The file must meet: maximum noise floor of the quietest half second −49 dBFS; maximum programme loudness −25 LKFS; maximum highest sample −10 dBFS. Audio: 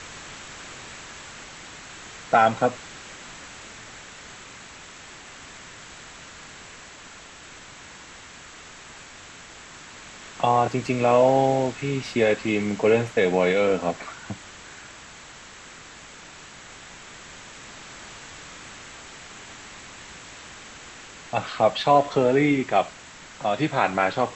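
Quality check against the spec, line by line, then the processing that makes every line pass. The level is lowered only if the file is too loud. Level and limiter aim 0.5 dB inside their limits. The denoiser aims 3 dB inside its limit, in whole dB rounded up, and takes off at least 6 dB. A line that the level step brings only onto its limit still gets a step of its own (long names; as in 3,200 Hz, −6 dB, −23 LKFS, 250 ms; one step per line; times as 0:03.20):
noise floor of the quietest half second −44 dBFS: out of spec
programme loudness −22.0 LKFS: out of spec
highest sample −6.0 dBFS: out of spec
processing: broadband denoise 6 dB, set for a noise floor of −44 dBFS
level −3.5 dB
brickwall limiter −10.5 dBFS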